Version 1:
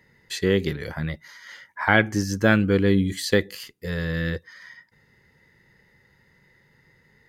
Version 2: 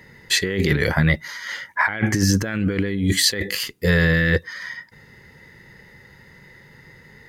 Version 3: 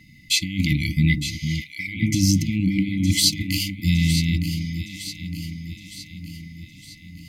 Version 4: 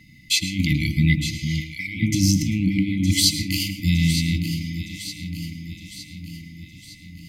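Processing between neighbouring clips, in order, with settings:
dynamic bell 2 kHz, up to +8 dB, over -41 dBFS, Q 2.4; compressor with a negative ratio -27 dBFS, ratio -1; trim +7 dB
FFT band-reject 330–2000 Hz; echo whose repeats swap between lows and highs 456 ms, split 1 kHz, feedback 72%, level -7 dB
reverberation RT60 0.35 s, pre-delay 100 ms, DRR 10.5 dB

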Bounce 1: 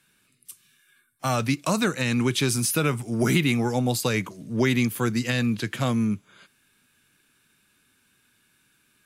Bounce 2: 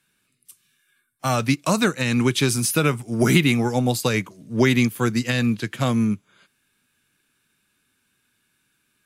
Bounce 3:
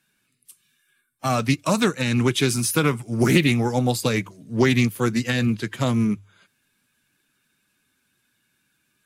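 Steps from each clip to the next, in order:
upward expansion 1.5:1, over -37 dBFS; trim +5.5 dB
coarse spectral quantiser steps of 15 dB; hum notches 50/100 Hz; loudspeaker Doppler distortion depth 0.16 ms

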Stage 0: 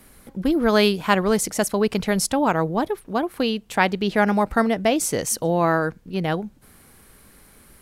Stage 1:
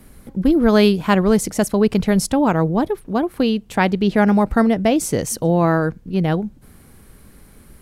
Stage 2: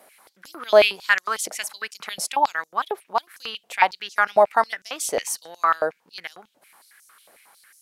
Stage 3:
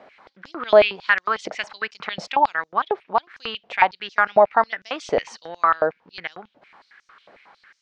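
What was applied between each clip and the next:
bass shelf 400 Hz +10 dB; trim -1 dB
step-sequenced high-pass 11 Hz 650–6100 Hz; trim -3 dB
Gaussian low-pass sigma 2.3 samples; in parallel at +2 dB: compression, threshold -26 dBFS, peak gain reduction 16.5 dB; on the sum: bass shelf 160 Hz +8 dB; trim -1 dB

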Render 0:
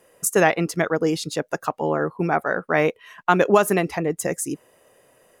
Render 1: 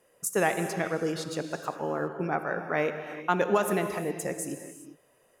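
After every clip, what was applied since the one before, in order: gated-style reverb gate 430 ms flat, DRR 7 dB; trim -8.5 dB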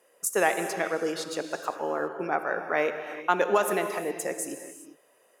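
high-pass 340 Hz 12 dB/octave; trim +2.5 dB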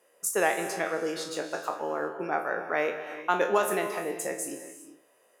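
spectral sustain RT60 0.32 s; trim -2.5 dB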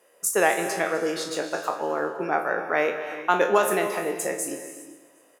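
feedback delay 254 ms, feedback 40%, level -18 dB; trim +4.5 dB

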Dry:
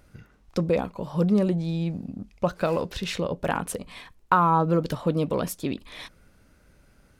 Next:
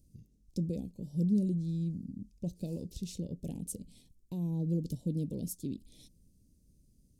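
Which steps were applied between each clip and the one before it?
Chebyshev band-stop 240–6800 Hz, order 2; trim -6 dB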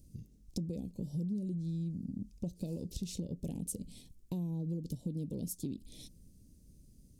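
compression 6:1, threshold -41 dBFS, peak gain reduction 15.5 dB; trim +6 dB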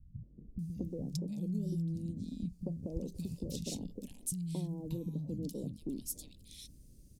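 three bands offset in time lows, mids, highs 230/590 ms, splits 190/1200 Hz; trim +2.5 dB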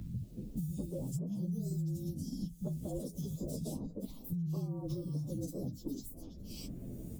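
frequency axis rescaled in octaves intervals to 112%; three bands compressed up and down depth 100%; trim +2.5 dB

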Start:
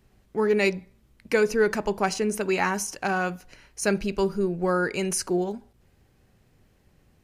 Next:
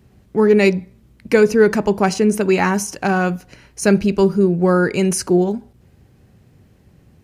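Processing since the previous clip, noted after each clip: high-pass 75 Hz 12 dB/octave; bass shelf 350 Hz +10 dB; trim +5 dB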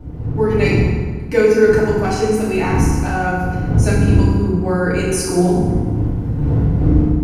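wind noise 140 Hz -20 dBFS; level rider gain up to 10 dB; FDN reverb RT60 1.6 s, low-frequency decay 1.25×, high-frequency decay 0.65×, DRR -8.5 dB; trim -10 dB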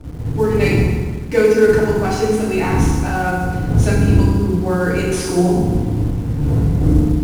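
CVSD coder 64 kbps; in parallel at -12 dB: bit crusher 5-bit; on the sum: trim -2 dB

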